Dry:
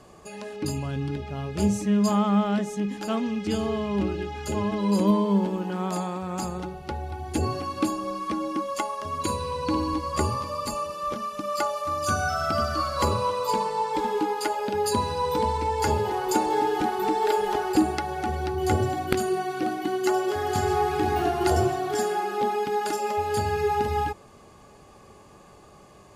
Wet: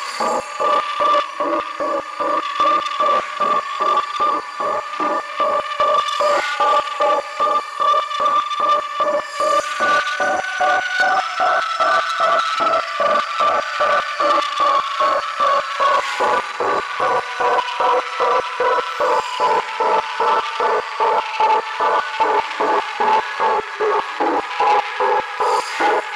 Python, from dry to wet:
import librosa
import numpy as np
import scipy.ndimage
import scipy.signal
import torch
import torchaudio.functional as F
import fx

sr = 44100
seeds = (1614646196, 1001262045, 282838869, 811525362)

p1 = scipy.signal.sosfilt(scipy.signal.butter(2, 6700.0, 'lowpass', fs=sr, output='sos'), x)
p2 = fx.high_shelf_res(p1, sr, hz=2400.0, db=-8.5, q=1.5)
p3 = fx.over_compress(p2, sr, threshold_db=-27.0, ratio=-1.0)
p4 = p2 + (p3 * 10.0 ** (-2.0 / 20.0))
p5 = fx.echo_diffused(p4, sr, ms=1029, feedback_pct=44, wet_db=-6)
p6 = fx.paulstretch(p5, sr, seeds[0], factor=6.8, window_s=0.05, from_s=10.66)
p7 = 10.0 ** (-20.0 / 20.0) * np.tanh(p6 / 10.0 ** (-20.0 / 20.0))
p8 = fx.filter_lfo_highpass(p7, sr, shape='square', hz=2.5, low_hz=520.0, high_hz=1900.0, q=0.9)
y = p8 * 10.0 ** (9.0 / 20.0)